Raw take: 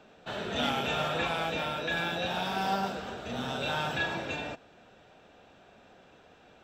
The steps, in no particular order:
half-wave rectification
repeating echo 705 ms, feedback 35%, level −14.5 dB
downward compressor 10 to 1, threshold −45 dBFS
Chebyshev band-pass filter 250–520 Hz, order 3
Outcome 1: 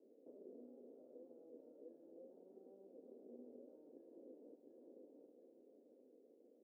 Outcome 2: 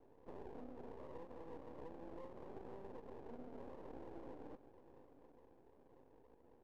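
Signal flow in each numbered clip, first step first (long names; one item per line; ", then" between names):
repeating echo, then half-wave rectification, then downward compressor, then Chebyshev band-pass filter
Chebyshev band-pass filter, then downward compressor, then repeating echo, then half-wave rectification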